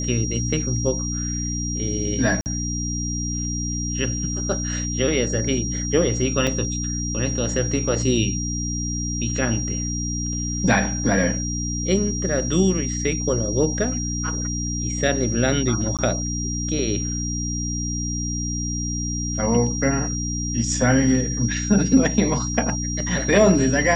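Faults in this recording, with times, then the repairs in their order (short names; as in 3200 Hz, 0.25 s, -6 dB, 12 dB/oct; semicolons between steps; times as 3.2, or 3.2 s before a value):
hum 60 Hz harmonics 5 -27 dBFS
tone 5700 Hz -28 dBFS
2.41–2.46 gap 49 ms
6.47 gap 3.7 ms
15.97–15.99 gap 17 ms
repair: notch 5700 Hz, Q 30; de-hum 60 Hz, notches 5; interpolate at 2.41, 49 ms; interpolate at 6.47, 3.7 ms; interpolate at 15.97, 17 ms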